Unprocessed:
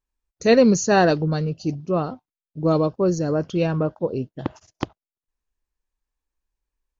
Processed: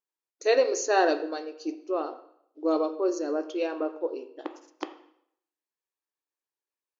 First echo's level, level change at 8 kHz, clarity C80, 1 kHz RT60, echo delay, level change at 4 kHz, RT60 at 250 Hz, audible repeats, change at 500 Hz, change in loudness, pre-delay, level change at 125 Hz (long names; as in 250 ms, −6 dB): no echo audible, can't be measured, 15.0 dB, 0.70 s, no echo audible, −5.5 dB, 0.65 s, no echo audible, −5.5 dB, −7.0 dB, 7 ms, below −40 dB